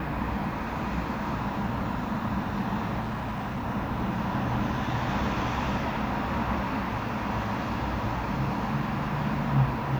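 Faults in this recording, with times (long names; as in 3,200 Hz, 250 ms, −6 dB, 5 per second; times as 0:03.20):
0:03.00–0:03.65: clipping −28 dBFS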